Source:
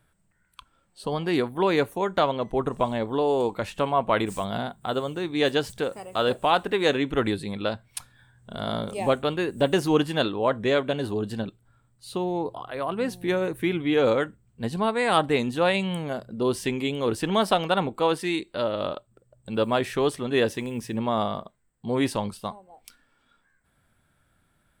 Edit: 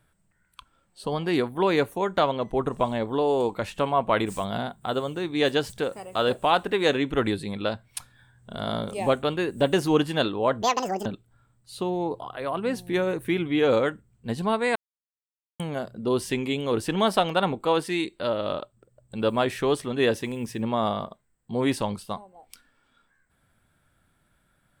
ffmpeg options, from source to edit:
ffmpeg -i in.wav -filter_complex "[0:a]asplit=5[link_01][link_02][link_03][link_04][link_05];[link_01]atrim=end=10.624[link_06];[link_02]atrim=start=10.62:end=11.4,asetpts=PTS-STARTPTS,asetrate=78939,aresample=44100[link_07];[link_03]atrim=start=11.396:end=15.1,asetpts=PTS-STARTPTS,afade=type=out:start_time=3.7:duration=0.004:curve=hsin[link_08];[link_04]atrim=start=15.1:end=15.94,asetpts=PTS-STARTPTS,volume=0[link_09];[link_05]atrim=start=15.94,asetpts=PTS-STARTPTS,afade=type=in:duration=0.004:curve=hsin[link_10];[link_06][link_07]acrossfade=duration=0.004:curve1=hsin:curve2=hsin[link_11];[link_08][link_09][link_10]concat=n=3:v=0:a=1[link_12];[link_11][link_12]acrossfade=duration=0.004:curve1=hsin:curve2=hsin" out.wav

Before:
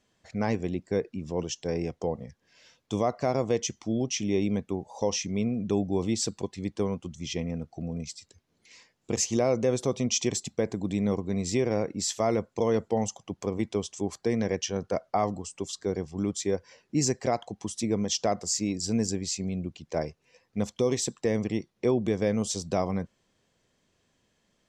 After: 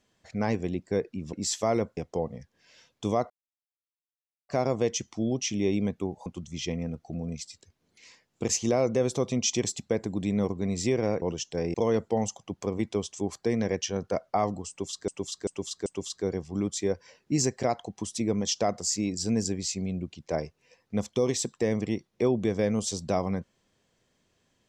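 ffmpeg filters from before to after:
ffmpeg -i in.wav -filter_complex "[0:a]asplit=10[link_01][link_02][link_03][link_04][link_05][link_06][link_07][link_08][link_09][link_10];[link_01]atrim=end=1.332[link_11];[link_02]atrim=start=11.898:end=12.542[link_12];[link_03]atrim=start=1.848:end=3.18,asetpts=PTS-STARTPTS,afade=type=out:start_time=1.328:duration=0.004:curve=hsin,apad=pad_dur=1.19[link_13];[link_04]atrim=start=3.18:end=4.952,asetpts=PTS-STARTPTS,afade=type=in:duration=0.004:curve=hsin[link_14];[link_05]atrim=start=6.938:end=11.902[link_15];[link_06]atrim=start=1.328:end=1.852[link_16];[link_07]atrim=start=12.538:end=15.882[link_17];[link_08]atrim=start=15.488:end=15.882[link_18];[link_09]atrim=start=15.488:end=15.882[link_19];[link_10]atrim=start=15.488[link_20];[link_11][link_12]acrossfade=duration=0.004:curve1=hsin:curve2=hsin[link_21];[link_13][link_14]concat=n=2:v=0:a=1[link_22];[link_21][link_22]acrossfade=duration=0.004:curve1=hsin:curve2=hsin[link_23];[link_23][link_15]acrossfade=duration=0.004:curve1=hsin:curve2=hsin[link_24];[link_24][link_16]acrossfade=duration=0.004:curve1=hsin:curve2=hsin[link_25];[link_25][link_17]acrossfade=duration=0.004:curve1=hsin:curve2=hsin[link_26];[link_26][link_18]acrossfade=duration=0.004:curve1=hsin:curve2=hsin[link_27];[link_27][link_19]acrossfade=duration=0.004:curve1=hsin:curve2=hsin[link_28];[link_28][link_20]acrossfade=duration=0.004:curve1=hsin:curve2=hsin" out.wav

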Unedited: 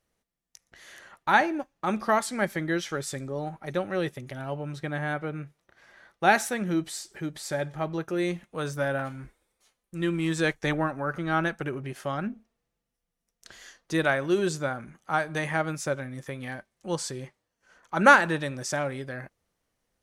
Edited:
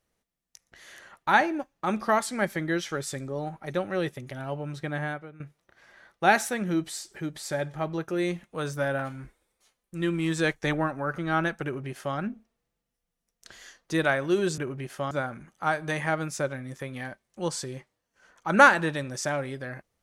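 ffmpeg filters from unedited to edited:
ffmpeg -i in.wav -filter_complex "[0:a]asplit=4[link_01][link_02][link_03][link_04];[link_01]atrim=end=5.4,asetpts=PTS-STARTPTS,afade=type=out:start_time=5.04:duration=0.36:curve=qua:silence=0.16788[link_05];[link_02]atrim=start=5.4:end=14.582,asetpts=PTS-STARTPTS,afade=type=in:duration=0.004:curve=hsin:silence=0.16788[link_06];[link_03]atrim=start=11.638:end=12.172[link_07];[link_04]atrim=start=14.578[link_08];[link_05][link_06]concat=n=2:v=0:a=1[link_09];[link_09][link_07]acrossfade=duration=0.004:curve1=hsin:curve2=hsin[link_10];[link_10][link_08]acrossfade=duration=0.004:curve1=hsin:curve2=hsin" out.wav

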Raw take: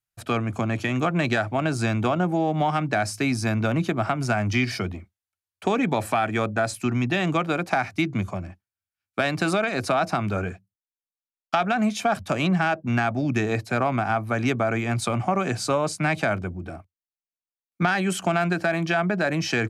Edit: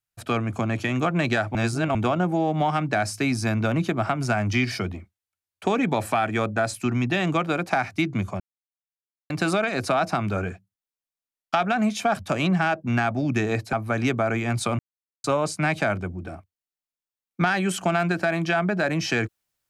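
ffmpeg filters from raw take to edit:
ffmpeg -i in.wav -filter_complex "[0:a]asplit=8[link_01][link_02][link_03][link_04][link_05][link_06][link_07][link_08];[link_01]atrim=end=1.552[link_09];[link_02]atrim=start=1.548:end=1.952,asetpts=PTS-STARTPTS,areverse[link_10];[link_03]atrim=start=1.948:end=8.4,asetpts=PTS-STARTPTS,afade=type=out:start_time=6.448:duration=0.004:curve=hsin[link_11];[link_04]atrim=start=8.4:end=9.3,asetpts=PTS-STARTPTS,volume=0[link_12];[link_05]atrim=start=9.3:end=13.732,asetpts=PTS-STARTPTS,afade=type=in:duration=0.004:curve=hsin[link_13];[link_06]atrim=start=14.138:end=15.2,asetpts=PTS-STARTPTS,afade=type=out:start_time=1.058:duration=0.004:curve=hsin[link_14];[link_07]atrim=start=15.2:end=15.65,asetpts=PTS-STARTPTS,volume=0[link_15];[link_08]atrim=start=15.65,asetpts=PTS-STARTPTS,afade=type=in:duration=0.004:curve=hsin[link_16];[link_09][link_10]acrossfade=duration=0.004:curve1=hsin:curve2=hsin[link_17];[link_11][link_12][link_13]concat=n=3:v=0:a=1[link_18];[link_17][link_18]acrossfade=duration=0.004:curve1=hsin:curve2=hsin[link_19];[link_14][link_15][link_16]concat=n=3:v=0:a=1[link_20];[link_19][link_20]acrossfade=duration=0.004:curve1=hsin:curve2=hsin" out.wav

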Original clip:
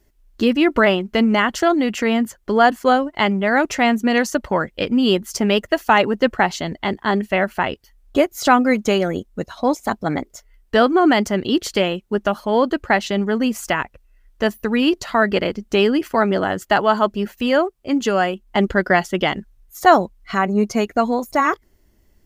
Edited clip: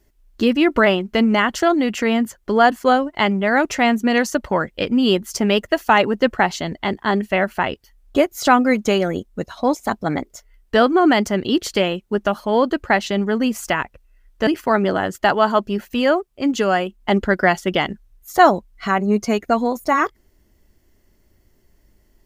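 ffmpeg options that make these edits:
ffmpeg -i in.wav -filter_complex "[0:a]asplit=2[link_01][link_02];[link_01]atrim=end=14.472[link_03];[link_02]atrim=start=15.938[link_04];[link_03][link_04]acrossfade=duration=0.004:curve1=hsin:curve2=hsin" out.wav

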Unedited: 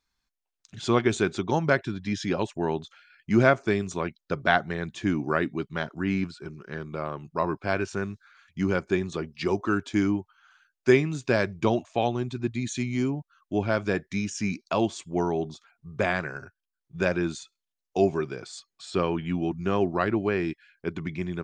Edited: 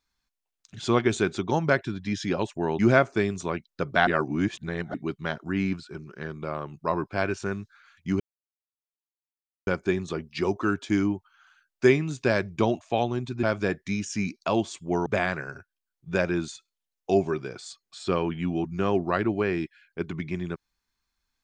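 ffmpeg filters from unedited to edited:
ffmpeg -i in.wav -filter_complex "[0:a]asplit=7[link_01][link_02][link_03][link_04][link_05][link_06][link_07];[link_01]atrim=end=2.792[link_08];[link_02]atrim=start=3.298:end=4.582[link_09];[link_03]atrim=start=4.578:end=5.452,asetpts=PTS-STARTPTS,areverse[link_10];[link_04]atrim=start=5.448:end=8.71,asetpts=PTS-STARTPTS,afade=type=out:start_time=3.258:duration=0.004:curve=hsin,apad=pad_dur=1.47[link_11];[link_05]atrim=start=8.71:end=12.472,asetpts=PTS-STARTPTS,afade=type=in:duration=0.004:curve=hsin[link_12];[link_06]atrim=start=13.678:end=15.312[link_13];[link_07]atrim=start=15.928[link_14];[link_08][link_09]acrossfade=duration=0.004:curve1=hsin:curve2=hsin[link_15];[link_15][link_10]acrossfade=duration=0.004:curve1=hsin:curve2=hsin[link_16];[link_11][link_12]concat=n=2:v=0:a=1[link_17];[link_16][link_17]acrossfade=duration=0.004:curve1=hsin:curve2=hsin[link_18];[link_18][link_13]acrossfade=duration=0.004:curve1=hsin:curve2=hsin[link_19];[link_19][link_14]acrossfade=duration=0.004:curve1=hsin:curve2=hsin" out.wav

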